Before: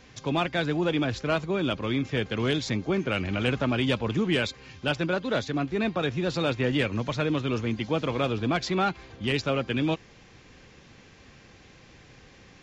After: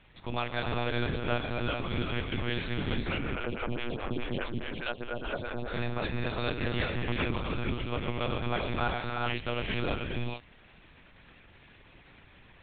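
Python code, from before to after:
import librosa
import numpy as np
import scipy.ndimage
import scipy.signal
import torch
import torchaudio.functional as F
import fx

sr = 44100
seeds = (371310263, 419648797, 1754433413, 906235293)

y = fx.highpass(x, sr, hz=66.0, slope=6)
y = fx.peak_eq(y, sr, hz=410.0, db=-6.5, octaves=0.71)
y = fx.rev_gated(y, sr, seeds[0], gate_ms=460, shape='rising', drr_db=-0.5)
y = fx.lpc_monotone(y, sr, seeds[1], pitch_hz=120.0, order=10)
y = fx.stagger_phaser(y, sr, hz=4.8, at=(3.34, 5.72), fade=0.02)
y = y * 10.0 ** (-5.0 / 20.0)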